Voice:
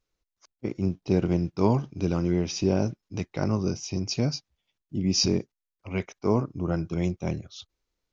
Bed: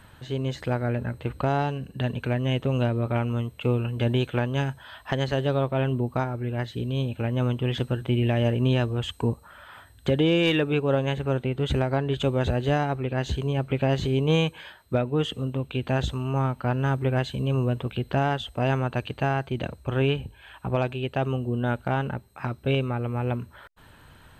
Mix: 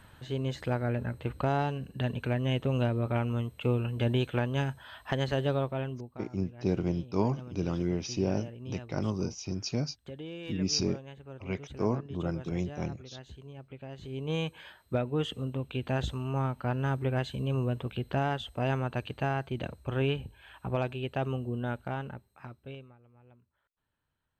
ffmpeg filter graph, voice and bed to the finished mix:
-filter_complex "[0:a]adelay=5550,volume=0.531[s0];[1:a]volume=3.55,afade=t=out:st=5.49:d=0.61:silence=0.149624,afade=t=in:st=13.97:d=0.76:silence=0.177828,afade=t=out:st=21.29:d=1.68:silence=0.0473151[s1];[s0][s1]amix=inputs=2:normalize=0"

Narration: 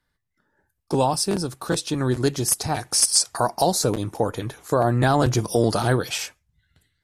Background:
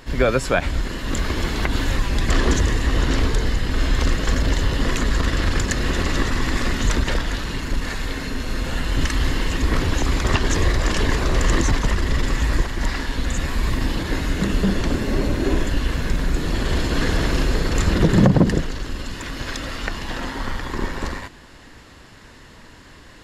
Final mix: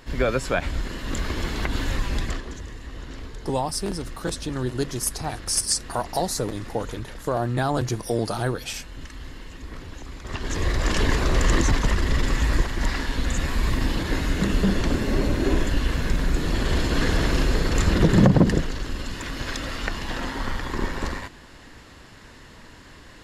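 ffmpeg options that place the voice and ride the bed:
-filter_complex "[0:a]adelay=2550,volume=0.562[s0];[1:a]volume=3.98,afade=t=out:st=2.17:d=0.25:silence=0.211349,afade=t=in:st=10.23:d=0.74:silence=0.149624[s1];[s0][s1]amix=inputs=2:normalize=0"

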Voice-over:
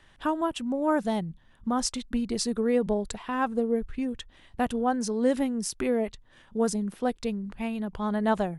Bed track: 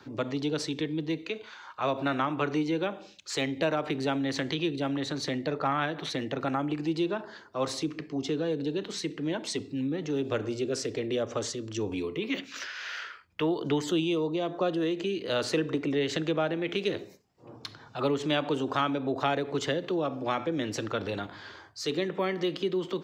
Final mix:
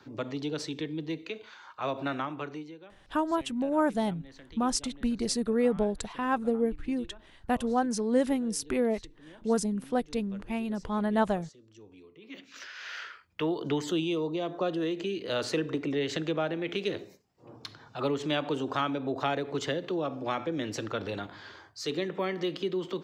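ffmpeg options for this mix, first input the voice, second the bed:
-filter_complex "[0:a]adelay=2900,volume=0.891[s0];[1:a]volume=5.96,afade=t=out:st=2.09:d=0.69:silence=0.133352,afade=t=in:st=12.2:d=0.81:silence=0.112202[s1];[s0][s1]amix=inputs=2:normalize=0"

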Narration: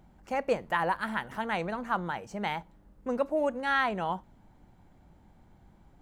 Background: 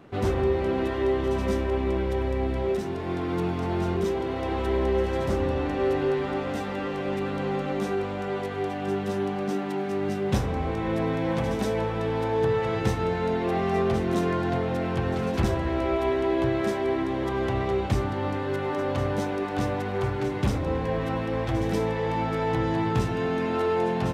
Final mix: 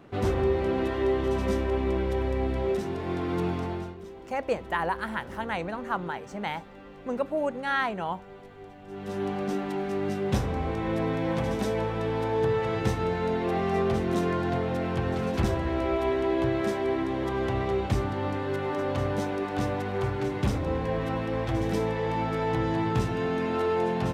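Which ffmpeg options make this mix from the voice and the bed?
-filter_complex "[0:a]adelay=4000,volume=1[s0];[1:a]volume=5.31,afade=t=out:st=3.54:d=0.41:silence=0.158489,afade=t=in:st=8.88:d=0.41:silence=0.16788[s1];[s0][s1]amix=inputs=2:normalize=0"

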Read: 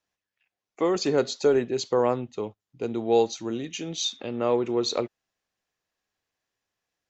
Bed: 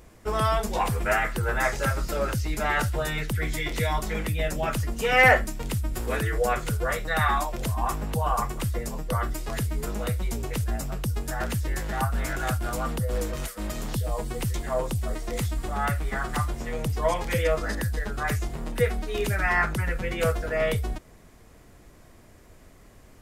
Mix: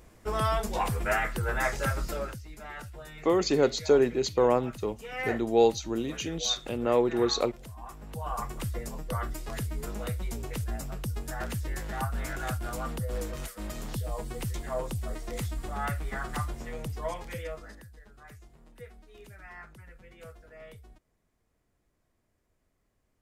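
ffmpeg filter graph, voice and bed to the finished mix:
-filter_complex "[0:a]adelay=2450,volume=0.944[s0];[1:a]volume=2.51,afade=t=out:st=2.07:d=0.33:silence=0.211349,afade=t=in:st=7.95:d=0.63:silence=0.266073,afade=t=out:st=16.46:d=1.42:silence=0.125893[s1];[s0][s1]amix=inputs=2:normalize=0"

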